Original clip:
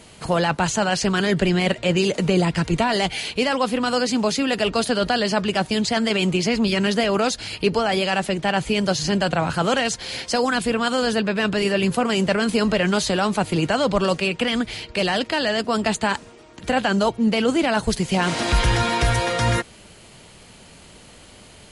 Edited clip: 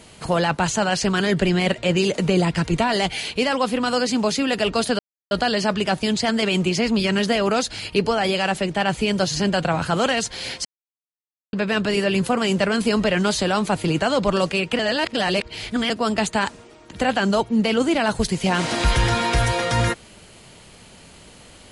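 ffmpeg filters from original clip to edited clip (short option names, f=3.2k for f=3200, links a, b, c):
-filter_complex "[0:a]asplit=6[a][b][c][d][e][f];[a]atrim=end=4.99,asetpts=PTS-STARTPTS,afade=t=out:st=4.986:d=0.004:c=hsin,apad=pad_dur=0.32[g];[b]atrim=start=4.99:end=10.33,asetpts=PTS-STARTPTS,afade=t=in:d=0.004:c=hsin,afade=t=out:st=5.336:d=0.004:c=hsin[h];[c]atrim=start=10.33:end=11.21,asetpts=PTS-STARTPTS,volume=0[i];[d]atrim=start=11.21:end=14.472,asetpts=PTS-STARTPTS,afade=t=in:d=0.004:c=hsin[j];[e]atrim=start=14.468:end=15.582,asetpts=PTS-STARTPTS,areverse[k];[f]atrim=start=15.578[l];[g][h][i][j]concat=n=4:v=0:a=1[m];[m][k]acrossfade=d=0.004:c1=hsin:c2=hsin[n];[n][l]acrossfade=d=0.004:c1=hsin:c2=hsin"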